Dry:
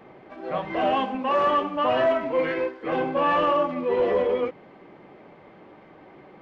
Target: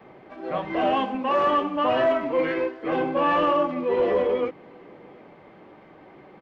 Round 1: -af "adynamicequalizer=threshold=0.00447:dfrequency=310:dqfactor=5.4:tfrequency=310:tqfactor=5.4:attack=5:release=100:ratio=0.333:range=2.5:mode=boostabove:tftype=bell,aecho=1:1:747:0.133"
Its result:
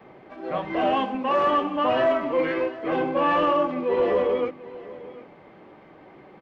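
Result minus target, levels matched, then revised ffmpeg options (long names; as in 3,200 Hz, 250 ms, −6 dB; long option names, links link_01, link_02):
echo-to-direct +11 dB
-af "adynamicequalizer=threshold=0.00447:dfrequency=310:dqfactor=5.4:tfrequency=310:tqfactor=5.4:attack=5:release=100:ratio=0.333:range=2.5:mode=boostabove:tftype=bell,aecho=1:1:747:0.0376"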